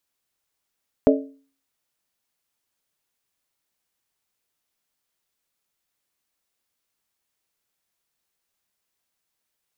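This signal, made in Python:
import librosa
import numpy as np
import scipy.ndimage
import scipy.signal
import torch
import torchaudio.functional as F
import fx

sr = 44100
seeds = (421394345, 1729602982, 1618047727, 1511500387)

y = fx.strike_skin(sr, length_s=0.63, level_db=-12.0, hz=274.0, decay_s=0.43, tilt_db=1.5, modes=4)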